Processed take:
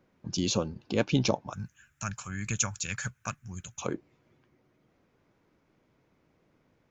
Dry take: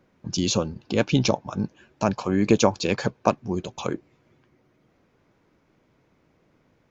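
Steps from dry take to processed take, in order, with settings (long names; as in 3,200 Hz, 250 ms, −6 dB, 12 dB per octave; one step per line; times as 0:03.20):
0:01.53–0:03.82: drawn EQ curve 120 Hz 0 dB, 370 Hz −24 dB, 970 Hz −14 dB, 1,400 Hz +3 dB, 2,900 Hz −2 dB, 4,600 Hz −7 dB, 7,200 Hz +13 dB
level −5 dB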